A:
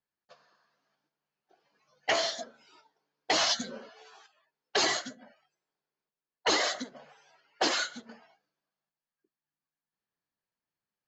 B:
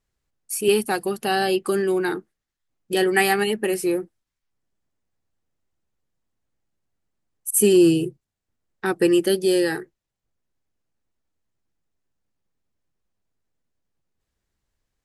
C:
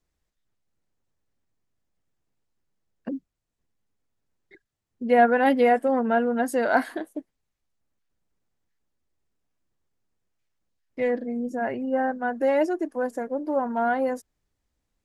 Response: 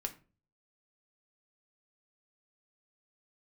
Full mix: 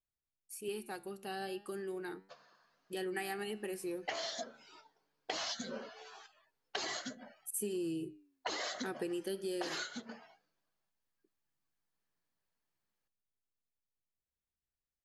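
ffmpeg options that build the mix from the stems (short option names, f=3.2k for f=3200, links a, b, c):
-filter_complex "[0:a]acompressor=threshold=-34dB:ratio=6,adelay=2000,volume=1dB[a];[1:a]dynaudnorm=f=370:g=17:m=11.5dB,flanger=delay=9.2:depth=6.3:regen=87:speed=0.38:shape=sinusoidal,volume=-15.5dB[b];[a][b]amix=inputs=2:normalize=0,acompressor=threshold=-35dB:ratio=6"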